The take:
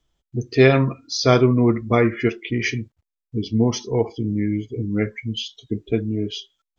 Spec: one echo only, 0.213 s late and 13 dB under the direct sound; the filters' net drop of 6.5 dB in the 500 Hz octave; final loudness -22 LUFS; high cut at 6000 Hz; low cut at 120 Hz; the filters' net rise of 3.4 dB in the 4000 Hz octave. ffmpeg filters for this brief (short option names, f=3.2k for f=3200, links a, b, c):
-af "highpass=120,lowpass=6k,equalizer=f=500:t=o:g=-9,equalizer=f=4k:t=o:g=5.5,aecho=1:1:213:0.224,volume=1.5dB"